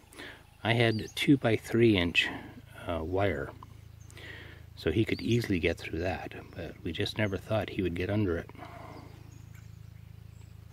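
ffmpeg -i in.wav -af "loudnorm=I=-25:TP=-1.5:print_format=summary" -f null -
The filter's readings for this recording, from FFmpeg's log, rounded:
Input Integrated:    -30.1 LUFS
Input True Peak:      -9.0 dBTP
Input LRA:             9.0 LU
Input Threshold:     -42.5 LUFS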